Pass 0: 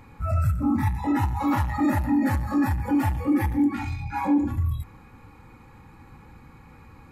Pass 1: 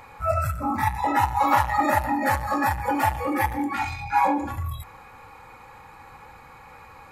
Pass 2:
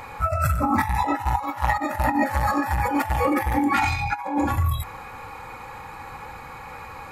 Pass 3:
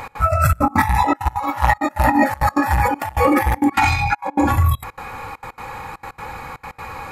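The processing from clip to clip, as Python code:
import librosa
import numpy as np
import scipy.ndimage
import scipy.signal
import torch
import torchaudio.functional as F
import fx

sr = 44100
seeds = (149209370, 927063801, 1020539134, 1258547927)

y1 = fx.low_shelf_res(x, sr, hz=410.0, db=-12.0, q=1.5)
y1 = F.gain(torch.from_numpy(y1), 7.0).numpy()
y2 = fx.over_compress(y1, sr, threshold_db=-26.0, ratio=-0.5)
y2 = F.gain(torch.from_numpy(y2), 4.5).numpy()
y3 = fx.step_gate(y2, sr, bpm=199, pattern='x.xxxxx.', floor_db=-24.0, edge_ms=4.5)
y3 = F.gain(torch.from_numpy(y3), 6.5).numpy()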